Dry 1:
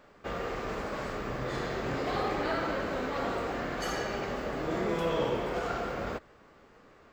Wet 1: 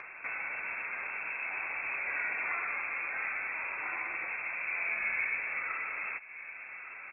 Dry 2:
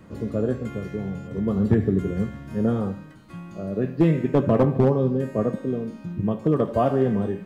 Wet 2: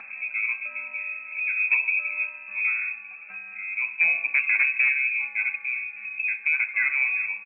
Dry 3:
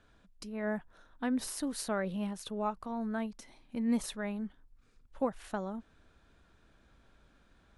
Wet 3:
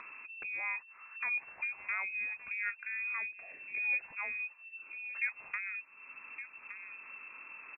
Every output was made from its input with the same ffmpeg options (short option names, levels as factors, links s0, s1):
-filter_complex "[0:a]asplit=2[s0][s1];[s1]adelay=1166,volume=0.0891,highshelf=f=4000:g=-26.2[s2];[s0][s2]amix=inputs=2:normalize=0,lowpass=f=2300:t=q:w=0.5098,lowpass=f=2300:t=q:w=0.6013,lowpass=f=2300:t=q:w=0.9,lowpass=f=2300:t=q:w=2.563,afreqshift=-2700,acompressor=mode=upward:threshold=0.0316:ratio=2.5,volume=0.668"